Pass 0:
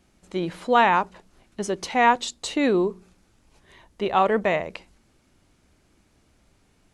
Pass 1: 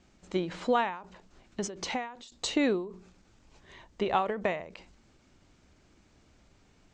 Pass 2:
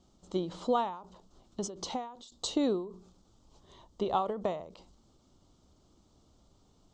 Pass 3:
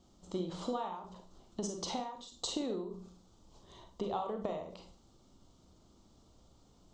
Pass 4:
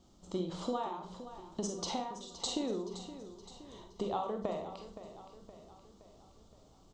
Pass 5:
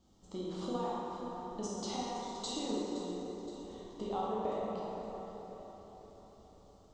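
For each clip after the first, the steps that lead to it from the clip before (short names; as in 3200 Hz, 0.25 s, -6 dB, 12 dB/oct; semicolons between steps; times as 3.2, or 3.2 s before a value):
steep low-pass 7800 Hz 48 dB/oct; compressor 10:1, threshold -22 dBFS, peak gain reduction 10.5 dB; ending taper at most 100 dB/s
band shelf 2000 Hz -15 dB 1 oct; gain -2 dB
compressor 6:1, threshold -34 dBFS, peak gain reduction 10.5 dB; Schroeder reverb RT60 0.36 s, combs from 33 ms, DRR 4.5 dB
feedback echo 0.519 s, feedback 52%, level -13 dB; gain +1 dB
plate-style reverb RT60 4 s, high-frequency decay 0.45×, DRR -5 dB; gain -6.5 dB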